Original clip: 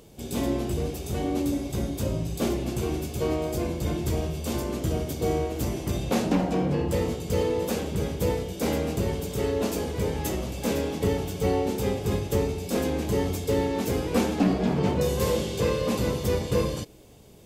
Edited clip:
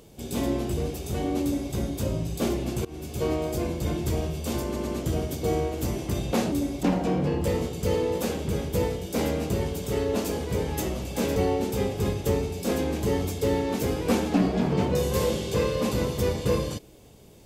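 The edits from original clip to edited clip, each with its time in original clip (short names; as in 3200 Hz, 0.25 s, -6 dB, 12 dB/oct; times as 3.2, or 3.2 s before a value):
1.43–1.74 copy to 6.3
2.85–3.2 fade in linear, from -22 dB
4.65 stutter 0.11 s, 3 plays
10.83–11.42 cut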